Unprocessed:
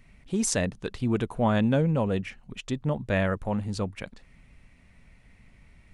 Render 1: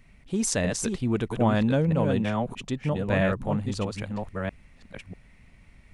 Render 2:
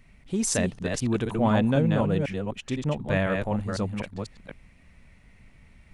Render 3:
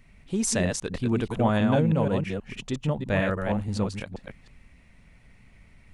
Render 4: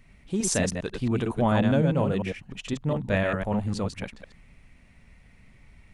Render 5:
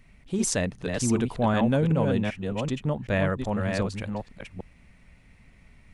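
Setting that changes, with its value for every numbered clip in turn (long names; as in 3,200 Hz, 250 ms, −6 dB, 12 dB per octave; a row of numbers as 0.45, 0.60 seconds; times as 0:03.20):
delay that plays each chunk backwards, delay time: 642, 251, 160, 101, 384 milliseconds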